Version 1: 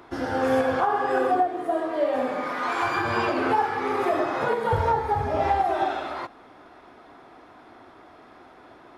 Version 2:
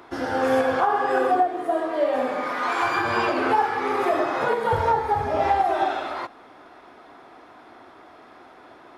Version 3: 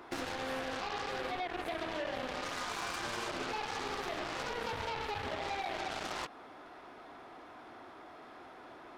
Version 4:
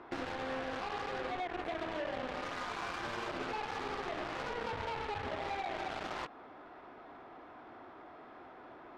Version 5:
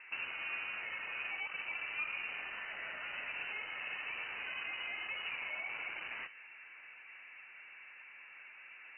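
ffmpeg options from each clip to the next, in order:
ffmpeg -i in.wav -af "lowshelf=frequency=200:gain=-7,volume=2.5dB" out.wav
ffmpeg -i in.wav -af "alimiter=limit=-20.5dB:level=0:latency=1:release=30,acompressor=threshold=-30dB:ratio=16,aeval=exprs='0.0596*(cos(1*acos(clip(val(0)/0.0596,-1,1)))-cos(1*PI/2))+0.0211*(cos(7*acos(clip(val(0)/0.0596,-1,1)))-cos(7*PI/2))':channel_layout=same,volume=-6dB" out.wav
ffmpeg -i in.wav -af "adynamicsmooth=sensitivity=4.5:basefreq=2900" out.wav
ffmpeg -i in.wav -filter_complex "[0:a]acrossover=split=680[link_01][link_02];[link_02]asoftclip=type=tanh:threshold=-38.5dB[link_03];[link_01][link_03]amix=inputs=2:normalize=0,flanger=delay=3.3:depth=8.9:regen=55:speed=2:shape=sinusoidal,lowpass=frequency=2600:width_type=q:width=0.5098,lowpass=frequency=2600:width_type=q:width=0.6013,lowpass=frequency=2600:width_type=q:width=0.9,lowpass=frequency=2600:width_type=q:width=2.563,afreqshift=-3000,volume=2.5dB" out.wav

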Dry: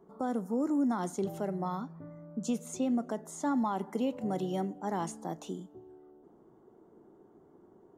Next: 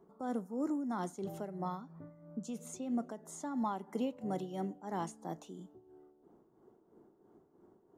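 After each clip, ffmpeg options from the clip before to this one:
ffmpeg -i in.wav -af "tremolo=f=3:d=0.6,volume=-3dB" out.wav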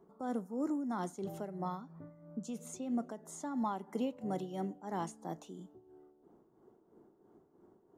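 ffmpeg -i in.wav -af anull out.wav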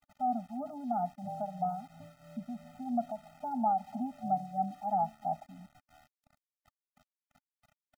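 ffmpeg -i in.wav -af "lowpass=frequency=790:width_type=q:width=4.9,aeval=exprs='val(0)*gte(abs(val(0)),0.00266)':channel_layout=same,afftfilt=real='re*eq(mod(floor(b*sr/1024/300),2),0)':imag='im*eq(mod(floor(b*sr/1024/300),2),0)':win_size=1024:overlap=0.75" out.wav

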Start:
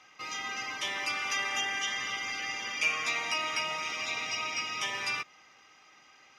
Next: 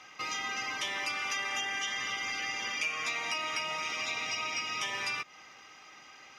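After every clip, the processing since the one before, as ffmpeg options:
ffmpeg -i in.wav -af "acompressor=threshold=-39dB:ratio=3,volume=5.5dB" out.wav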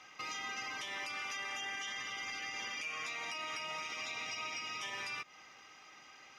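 ffmpeg -i in.wav -af "alimiter=level_in=4dB:limit=-24dB:level=0:latency=1:release=83,volume=-4dB,volume=-4dB" out.wav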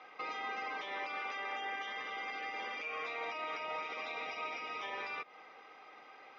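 ffmpeg -i in.wav -af "highpass=260,equalizer=frequency=470:width_type=q:width=4:gain=9,equalizer=frequency=740:width_type=q:width=4:gain=5,equalizer=frequency=1800:width_type=q:width=4:gain=-4,equalizer=frequency=2900:width_type=q:width=4:gain=-9,lowpass=frequency=3500:width=0.5412,lowpass=frequency=3500:width=1.3066,volume=3dB" out.wav

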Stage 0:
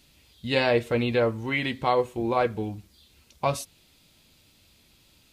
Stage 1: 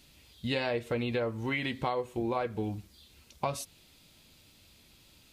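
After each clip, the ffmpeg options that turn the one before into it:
ffmpeg -i in.wav -af "acompressor=threshold=-28dB:ratio=6" out.wav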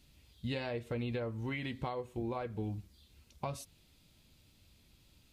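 ffmpeg -i in.wav -af "lowshelf=frequency=200:gain=9.5,volume=-8.5dB" out.wav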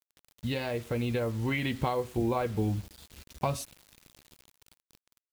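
ffmpeg -i in.wav -af "dynaudnorm=framelen=280:gausssize=9:maxgain=4.5dB,acrusher=bits=8:mix=0:aa=0.000001,volume=4.5dB" out.wav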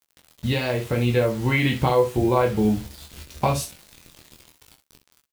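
ffmpeg -i in.wav -filter_complex "[0:a]asplit=2[link_01][link_02];[link_02]adelay=14,volume=-8.5dB[link_03];[link_01][link_03]amix=inputs=2:normalize=0,asplit=2[link_04][link_05];[link_05]aecho=0:1:24|66:0.596|0.299[link_06];[link_04][link_06]amix=inputs=2:normalize=0,volume=7dB" out.wav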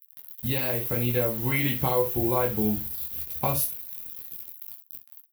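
ffmpeg -i in.wav -af "aexciter=amount=15.2:drive=4.1:freq=11000,volume=-6dB" out.wav

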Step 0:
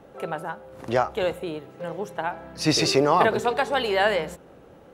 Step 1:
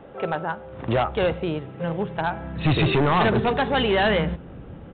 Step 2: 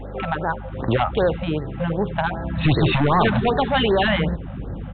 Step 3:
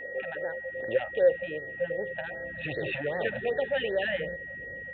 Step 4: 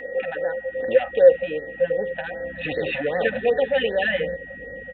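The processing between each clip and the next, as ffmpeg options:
ffmpeg -i in.wav -af "asubboost=boost=5:cutoff=220,aresample=8000,asoftclip=type=hard:threshold=-21dB,aresample=44100,volume=5dB" out.wav
ffmpeg -i in.wav -filter_complex "[0:a]asplit=2[link_01][link_02];[link_02]acompressor=threshold=-29dB:ratio=6,volume=2dB[link_03];[link_01][link_03]amix=inputs=2:normalize=0,aeval=exprs='val(0)+0.02*(sin(2*PI*50*n/s)+sin(2*PI*2*50*n/s)/2+sin(2*PI*3*50*n/s)/3+sin(2*PI*4*50*n/s)/4+sin(2*PI*5*50*n/s)/5)':channel_layout=same,afftfilt=real='re*(1-between(b*sr/1024,350*pow(2900/350,0.5+0.5*sin(2*PI*2.6*pts/sr))/1.41,350*pow(2900/350,0.5+0.5*sin(2*PI*2.6*pts/sr))*1.41))':imag='im*(1-between(b*sr/1024,350*pow(2900/350,0.5+0.5*sin(2*PI*2.6*pts/sr))/1.41,350*pow(2900/350,0.5+0.5*sin(2*PI*2.6*pts/sr))*1.41))':win_size=1024:overlap=0.75" out.wav
ffmpeg -i in.wav -filter_complex "[0:a]asplit=3[link_01][link_02][link_03];[link_01]bandpass=frequency=530:width_type=q:width=8,volume=0dB[link_04];[link_02]bandpass=frequency=1840:width_type=q:width=8,volume=-6dB[link_05];[link_03]bandpass=frequency=2480:width_type=q:width=8,volume=-9dB[link_06];[link_04][link_05][link_06]amix=inputs=3:normalize=0,aeval=exprs='val(0)+0.0112*sin(2*PI*1900*n/s)':channel_layout=same,asubboost=boost=3:cutoff=160,volume=1dB" out.wav
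ffmpeg -i in.wav -af "aecho=1:1:4:0.62,volume=6dB" out.wav

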